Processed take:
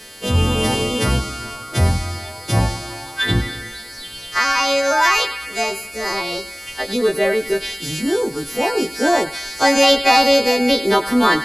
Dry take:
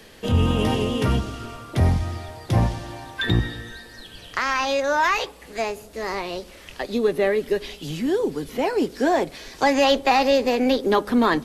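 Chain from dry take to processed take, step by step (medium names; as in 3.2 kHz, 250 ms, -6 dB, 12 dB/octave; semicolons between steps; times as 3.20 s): partials quantised in pitch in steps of 2 st; on a send: band-passed feedback delay 101 ms, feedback 75%, band-pass 2.1 kHz, level -10 dB; on the sum: trim +3.5 dB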